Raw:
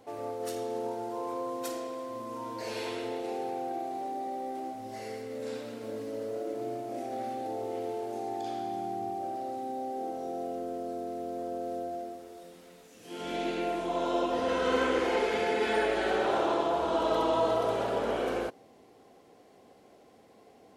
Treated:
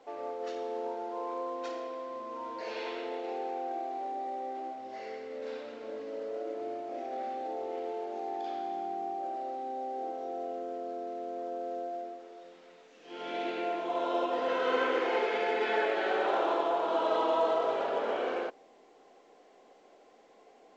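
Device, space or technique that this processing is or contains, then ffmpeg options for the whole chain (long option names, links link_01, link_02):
telephone: -af "highpass=380,lowpass=3500" -ar 16000 -c:a pcm_alaw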